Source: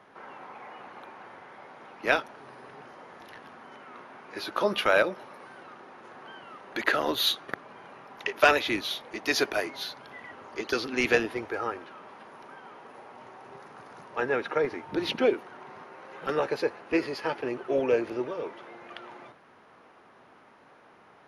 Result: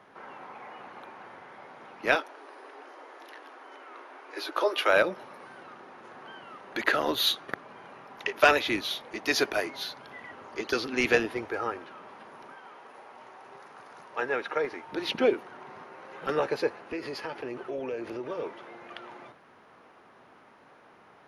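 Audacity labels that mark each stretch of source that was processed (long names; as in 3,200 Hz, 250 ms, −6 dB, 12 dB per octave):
2.150000	4.890000	Butterworth high-pass 270 Hz 96 dB per octave
12.520000	15.150000	low-shelf EQ 280 Hz −11 dB
16.780000	18.300000	downward compressor 4 to 1, threshold −32 dBFS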